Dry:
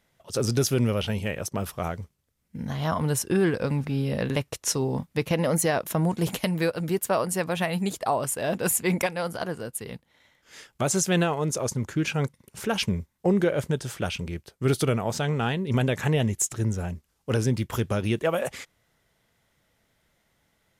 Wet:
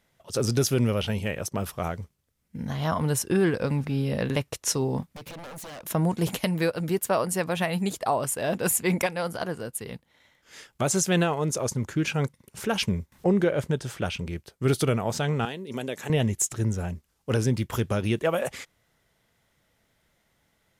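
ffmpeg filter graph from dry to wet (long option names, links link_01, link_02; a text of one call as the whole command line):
ffmpeg -i in.wav -filter_complex "[0:a]asettb=1/sr,asplit=3[link_01][link_02][link_03];[link_01]atrim=end=5.024[link_04];[link_02]atrim=start=5.02:end=5.85,asetpts=PTS-STARTPTS,afade=type=in:duration=0.004:curve=qsin,afade=type=out:start_time=0.826:duration=0.004:curve=qsin,acompressor=threshold=-30dB:ratio=16:attack=3.2:release=140:knee=1:detection=peak,aeval=exprs='0.0168*(abs(mod(val(0)/0.0168+3,4)-2)-1)':channel_layout=same[link_05];[link_03]atrim=start=5.846[link_06];[link_04][link_05]acrossfade=duration=0.004:curve1=hsin:curve2=qsin[link_07];[link_07][link_06]acrossfade=duration=0.004:curve1=qsin:curve2=hsin,asettb=1/sr,asplit=3[link_08][link_09][link_10];[link_08]atrim=end=13.124[link_11];[link_09]atrim=start=13.12:end=14.27,asetpts=PTS-STARTPTS,afade=type=in:duration=0.004:curve=qsin,afade=type=out:start_time=1.146:duration=0.004:curve=qsin,highshelf=frequency=5800:gain=-5,acompressor=mode=upward:threshold=-39dB:ratio=2.5:attack=3.2:release=140:knee=2.83:detection=peak[link_12];[link_10]atrim=start=14.266[link_13];[link_11][link_12]acrossfade=duration=0.004:curve1=hsin:curve2=qsin[link_14];[link_14][link_13]acrossfade=duration=0.004:curve1=qsin:curve2=hsin,asettb=1/sr,asplit=3[link_15][link_16][link_17];[link_15]atrim=end=15.454[link_18];[link_16]atrim=start=15.45:end=16.1,asetpts=PTS-STARTPTS,afade=type=in:duration=0.004:curve=qsin,afade=type=out:start_time=0.646:duration=0.004:curve=qsin,highpass=320,equalizer=frequency=1300:width_type=o:width=2.9:gain=-8.5[link_19];[link_17]atrim=start=16.096[link_20];[link_18][link_19]acrossfade=duration=0.004:curve1=hsin:curve2=qsin[link_21];[link_21][link_20]acrossfade=duration=0.004:curve1=qsin:curve2=hsin" out.wav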